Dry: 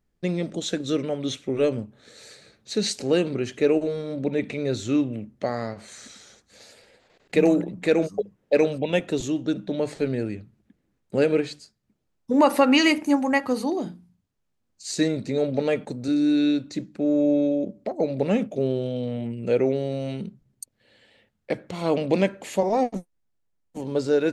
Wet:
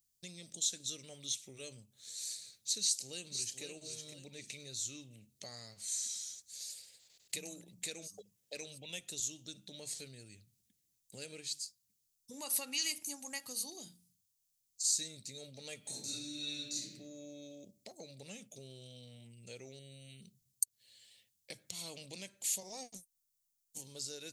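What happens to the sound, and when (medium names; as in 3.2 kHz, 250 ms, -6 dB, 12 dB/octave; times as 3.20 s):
2.80–3.62 s: echo throw 510 ms, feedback 30%, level -8.5 dB
15.81–16.94 s: reverb throw, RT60 0.94 s, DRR -8.5 dB
19.79–20.22 s: static phaser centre 2.3 kHz, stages 4
whole clip: FFT filter 120 Hz 0 dB, 270 Hz -15 dB, 1.5 kHz -22 dB, 3.6 kHz -8 dB, 6.2 kHz -2 dB; compression 2.5:1, threshold -43 dBFS; tilt EQ +4.5 dB/octave; trim -1 dB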